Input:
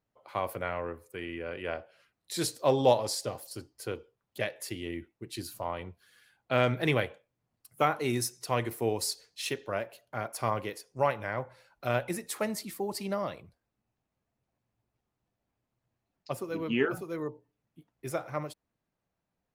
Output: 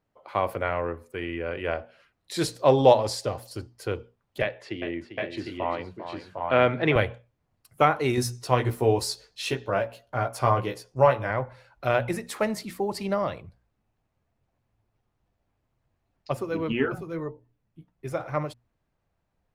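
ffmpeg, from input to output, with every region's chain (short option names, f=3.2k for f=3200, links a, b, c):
-filter_complex "[0:a]asettb=1/sr,asplit=3[a][b][c];[a]atrim=end=4.424[d];[b]atrim=start=4.42:end=6.96,asetpts=PTS-STARTPTS,afade=t=in:d=0.004:c=qsin,afade=t=out:st=2.536:d=0.004:c=qsin,highpass=170,lowpass=3.4k,aecho=1:1:397|755|777:0.316|0.596|0.376,atrim=end_sample=112014[e];[c]atrim=start=6.956[f];[d][e]acrossfade=d=0.004:c1=hsin:c2=qsin[g];[g][f]acrossfade=d=0.004:c1=qsin:c2=hsin,asettb=1/sr,asplit=3[h][i][j];[h]atrim=end=8.164[k];[i]atrim=start=8.16:end=11.31,asetpts=PTS-STARTPTS,afade=t=in:d=0.004:c=qsin,afade=t=out:st=3.146:d=0.004:c=qsin,equalizer=f=2.1k:t=o:w=0.5:g=-4.5,asplit=2[l][m];[m]adelay=16,volume=-4dB[n];[l][n]amix=inputs=2:normalize=0,atrim=end_sample=138915[o];[j]atrim=start=11.306[p];[k][o]acrossfade=d=0.004:c1=hsin:c2=qsin[q];[q][p]acrossfade=d=0.004:c1=qsin:c2=hsin,asettb=1/sr,asplit=3[r][s][t];[r]atrim=end=16.724[u];[s]atrim=start=16.72:end=18.2,asetpts=PTS-STARTPTS,afade=t=in:d=0.004:c=qsin,afade=t=out:st=1.476:d=0.004:c=qsin,lowshelf=f=180:g=5.5,flanger=delay=2.6:depth=4.2:regen=65:speed=1.3:shape=triangular[v];[t]atrim=start=18.196[w];[u][v]acrossfade=d=0.004:c1=hsin:c2=qsin[x];[x][w]acrossfade=d=0.004:c1=qsin:c2=hsin,lowpass=f=3.1k:p=1,bandreject=f=60:t=h:w=6,bandreject=f=120:t=h:w=6,bandreject=f=180:t=h:w=6,bandreject=f=240:t=h:w=6,asubboost=boost=2.5:cutoff=110,volume=7dB"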